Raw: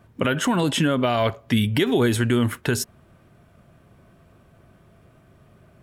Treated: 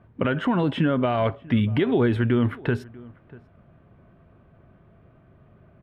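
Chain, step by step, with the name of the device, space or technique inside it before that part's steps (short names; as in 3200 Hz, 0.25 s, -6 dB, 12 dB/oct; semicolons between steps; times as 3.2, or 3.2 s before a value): shout across a valley (air absorption 460 m; outdoor echo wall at 110 m, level -22 dB)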